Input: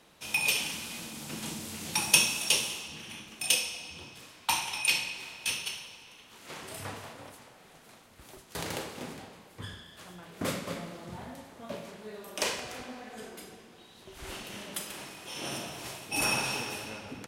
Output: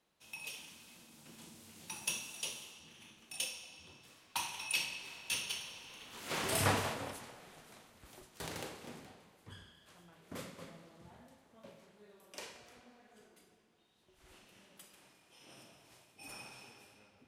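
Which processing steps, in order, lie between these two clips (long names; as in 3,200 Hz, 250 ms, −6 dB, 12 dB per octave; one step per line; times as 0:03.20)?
source passing by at 0:06.66, 10 m/s, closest 2.6 metres
level +9.5 dB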